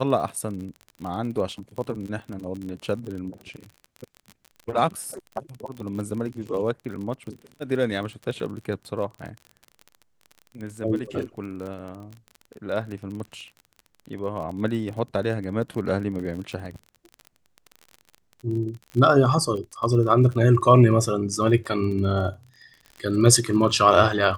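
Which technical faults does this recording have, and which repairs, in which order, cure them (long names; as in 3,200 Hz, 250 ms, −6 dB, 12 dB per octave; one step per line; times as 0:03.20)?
surface crackle 36 per second −32 dBFS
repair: click removal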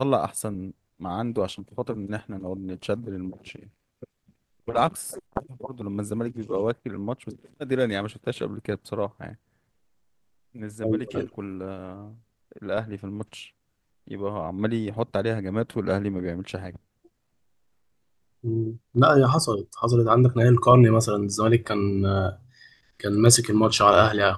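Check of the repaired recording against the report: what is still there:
none of them is left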